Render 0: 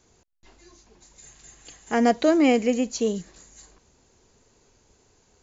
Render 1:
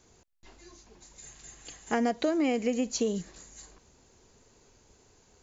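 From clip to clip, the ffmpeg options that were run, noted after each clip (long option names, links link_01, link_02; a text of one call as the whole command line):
ffmpeg -i in.wav -af "acompressor=threshold=-24dB:ratio=6" out.wav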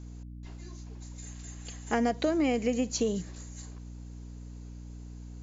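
ffmpeg -i in.wav -af "aeval=exprs='val(0)+0.00794*(sin(2*PI*60*n/s)+sin(2*PI*2*60*n/s)/2+sin(2*PI*3*60*n/s)/3+sin(2*PI*4*60*n/s)/4+sin(2*PI*5*60*n/s)/5)':channel_layout=same" out.wav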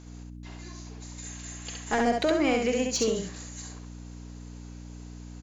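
ffmpeg -i in.wav -filter_complex "[0:a]asplit=2[link_01][link_02];[link_02]highpass=frequency=720:poles=1,volume=12dB,asoftclip=type=tanh:threshold=-15dB[link_03];[link_01][link_03]amix=inputs=2:normalize=0,lowpass=frequency=6300:poles=1,volume=-6dB,aecho=1:1:67|134|201:0.668|0.127|0.0241" out.wav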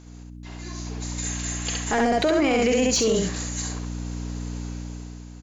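ffmpeg -i in.wav -af "dynaudnorm=framelen=210:gausssize=7:maxgain=10.5dB,alimiter=limit=-14.5dB:level=0:latency=1:release=19,volume=1dB" out.wav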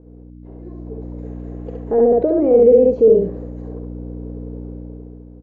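ffmpeg -i in.wav -af "lowpass=frequency=480:width_type=q:width=4.9" out.wav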